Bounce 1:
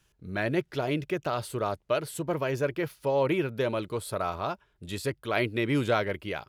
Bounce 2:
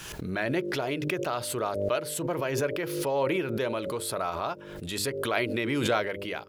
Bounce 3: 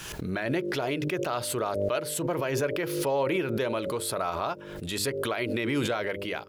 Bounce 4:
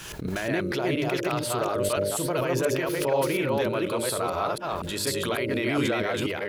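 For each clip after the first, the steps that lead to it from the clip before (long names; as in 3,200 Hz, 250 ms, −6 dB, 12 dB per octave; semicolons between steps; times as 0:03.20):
low-shelf EQ 140 Hz −11 dB; hum removal 49.99 Hz, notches 12; background raised ahead of every attack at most 38 dB per second
brickwall limiter −19.5 dBFS, peak gain reduction 8.5 dB; level +1.5 dB
delay that plays each chunk backwards 241 ms, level −0.5 dB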